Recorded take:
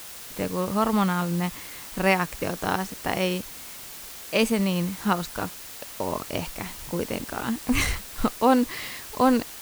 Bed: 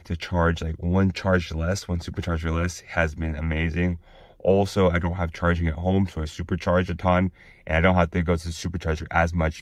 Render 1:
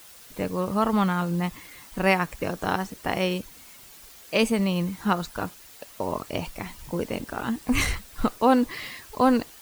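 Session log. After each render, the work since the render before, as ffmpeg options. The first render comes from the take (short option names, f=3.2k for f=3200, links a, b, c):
-af "afftdn=nr=9:nf=-41"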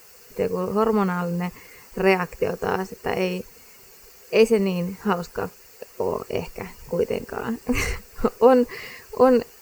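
-af "superequalizer=6b=0.631:7b=3.16:13b=0.282:16b=0.501"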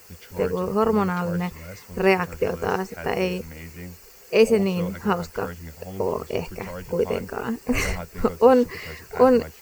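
-filter_complex "[1:a]volume=-15dB[a];[0:a][a]amix=inputs=2:normalize=0"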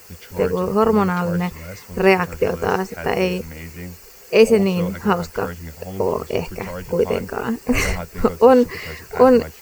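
-af "volume=4.5dB,alimiter=limit=-1dB:level=0:latency=1"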